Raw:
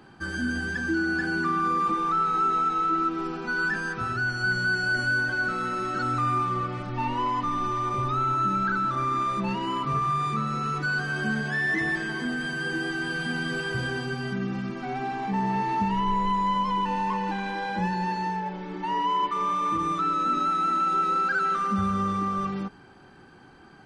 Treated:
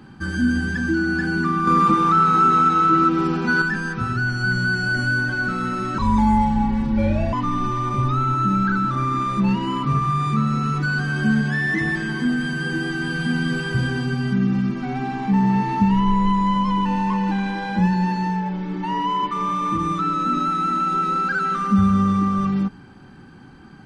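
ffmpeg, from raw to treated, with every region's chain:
-filter_complex "[0:a]asettb=1/sr,asplit=3[a][b][c];[a]atrim=end=1.674[d];[b]atrim=start=1.67:end=3.62,asetpts=PTS-STARTPTS,afade=t=in:d=0.004:c=qsin,afade=t=out:st=1.946:d=0.004:c=qsin,highpass=82,acontrast=72,tremolo=f=180:d=0.261[e];[c]atrim=start=3.616[f];[d][e]acrossfade=d=0.004:c1=hsin:c2=qsin[g];[g][f]acrossfade=d=0.004:c1=qsin:c2=hsin,asettb=1/sr,asplit=3[h][i][j];[h]atrim=end=5.984[k];[i]atrim=start=5.98:end=7.33,asetpts=PTS-STARTPTS,afade=t=in:d=0.004:c=qsin,afade=t=out:st=1.346:d=0.004:c=qsin,asplit=2[l][m];[m]adelay=41,volume=-6.5dB[n];[l][n]amix=inputs=2:normalize=0,atrim=end_sample=59535,afreqshift=-340[o];[j]atrim=start=7.326[p];[k][o]acrossfade=d=0.004:c1=hsin:c2=qsin[q];[q][p]acrossfade=d=0.004:c1=qsin:c2=hsin,lowshelf=f=310:t=q:w=1.5:g=6.5,bandreject=f=680:w=12,volume=3dB"

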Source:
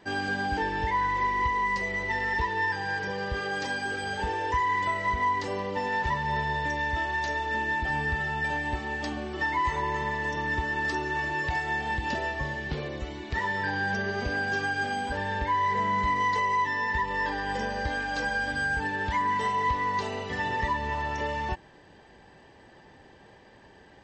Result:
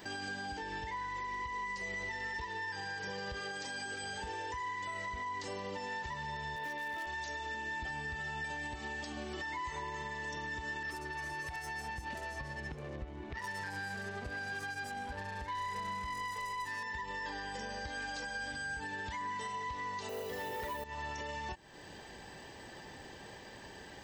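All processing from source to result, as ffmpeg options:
-filter_complex "[0:a]asettb=1/sr,asplit=3[a][b][c];[a]atrim=end=6.564[d];[b]atrim=start=6.56:end=7.07,asetpts=PTS-STARTPTS,afade=t=in:d=0.004:c=qsin,afade=t=out:st=0.506:d=0.004:c=qsin,highpass=210,lowpass=3.3k,asoftclip=type=hard:threshold=-24dB[e];[c]atrim=start=7.066[f];[d][e]acrossfade=d=0.004:c1=hsin:c2=qsin[g];[g][f]acrossfade=d=0.004:c1=qsin:c2=hsin,asettb=1/sr,asplit=3[h][i][j];[h]atrim=end=10.834[k];[i]atrim=start=10.83:end=16.83,asetpts=PTS-STARTPTS,afade=t=in:d=0.004:c=qsin,afade=t=out:st=5.996:d=0.004:c=qsin,equalizer=f=360:w=0.53:g=-5,adynamicsmooth=sensitivity=3:basefreq=770,acrossover=split=4900[l][m];[m]adelay=70[n];[l][n]amix=inputs=2:normalize=0,atrim=end_sample=264600[o];[j]atrim=start=16.826[p];[k][o]acrossfade=d=0.004:c1=hsin:c2=qsin[q];[q][p]acrossfade=d=0.004:c1=qsin:c2=hsin,asettb=1/sr,asplit=3[r][s][t];[r]atrim=end=20.094[u];[s]atrim=start=20.09:end=20.84,asetpts=PTS-STARTPTS,afade=t=in:d=0.004:c=qsin,afade=t=out:st=0.746:d=0.004:c=qsin,equalizer=f=490:t=o:w=1:g=14,aeval=exprs='0.266*sin(PI/2*1.78*val(0)/0.266)':c=same,acrusher=bits=7:mode=log:mix=0:aa=0.000001[v];[t]atrim=start=20.836[w];[u][v]acrossfade=d=0.004:c1=hsin:c2=qsin[x];[x][w]acrossfade=d=0.004:c1=qsin:c2=hsin,acompressor=threshold=-42dB:ratio=4,aemphasis=mode=production:type=75kf,alimiter=level_in=10dB:limit=-24dB:level=0:latency=1:release=88,volume=-10dB,volume=2dB"

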